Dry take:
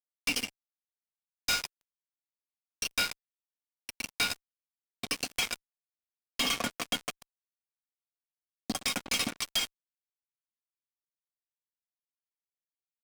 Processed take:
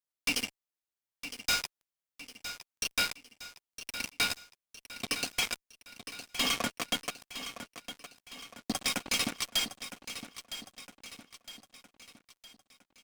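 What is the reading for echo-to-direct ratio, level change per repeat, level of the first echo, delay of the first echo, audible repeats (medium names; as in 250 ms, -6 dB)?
-10.5 dB, -6.5 dB, -11.5 dB, 961 ms, 4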